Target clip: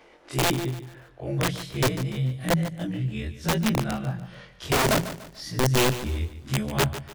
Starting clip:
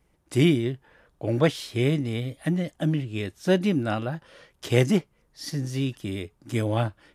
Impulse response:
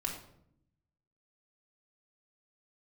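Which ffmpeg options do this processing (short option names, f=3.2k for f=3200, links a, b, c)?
-filter_complex "[0:a]afftfilt=real='re':imag='-im':win_size=2048:overlap=0.75,asubboost=boost=7.5:cutoff=140,acrossover=split=310|5400[a][b][c];[b]acompressor=mode=upward:threshold=-35dB:ratio=2.5[d];[a][d][c]amix=inputs=3:normalize=0,aeval=exprs='(mod(6.68*val(0)+1,2)-1)/6.68':c=same,bandreject=f=60:t=h:w=6,bandreject=f=120:t=h:w=6,bandreject=f=180:t=h:w=6,asplit=2[e][f];[f]aecho=0:1:146|292|438|584:0.224|0.0806|0.029|0.0104[g];[e][g]amix=inputs=2:normalize=0"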